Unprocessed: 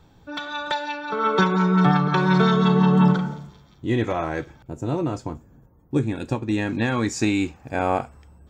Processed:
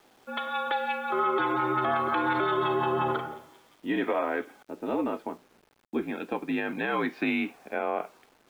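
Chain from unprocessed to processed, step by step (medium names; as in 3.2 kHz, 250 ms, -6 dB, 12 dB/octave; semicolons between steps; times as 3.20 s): mistuned SSB -55 Hz 350–3300 Hz; word length cut 10-bit, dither none; peak limiter -18 dBFS, peak gain reduction 9.5 dB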